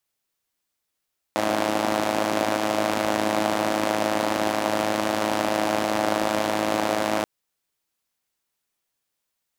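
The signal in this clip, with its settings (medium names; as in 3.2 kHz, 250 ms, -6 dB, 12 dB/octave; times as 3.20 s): four-cylinder engine model, steady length 5.88 s, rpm 3200, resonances 300/600 Hz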